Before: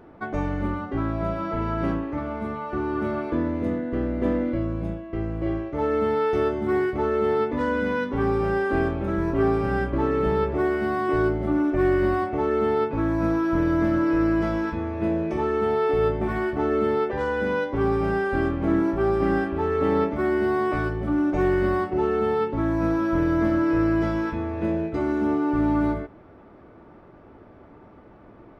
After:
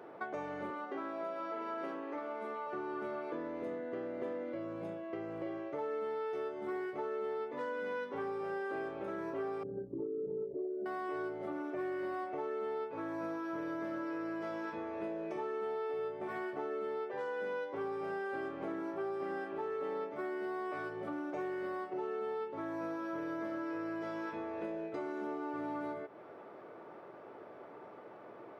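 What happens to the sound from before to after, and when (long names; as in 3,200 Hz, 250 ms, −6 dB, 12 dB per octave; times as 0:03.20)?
0:00.70–0:02.67: Chebyshev high-pass filter 240 Hz, order 3
0:09.63–0:10.86: spectral envelope exaggerated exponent 3
whole clip: high-pass filter 130 Hz 24 dB per octave; low shelf with overshoot 330 Hz −8.5 dB, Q 1.5; downward compressor 4 to 1, threshold −38 dBFS; level −1 dB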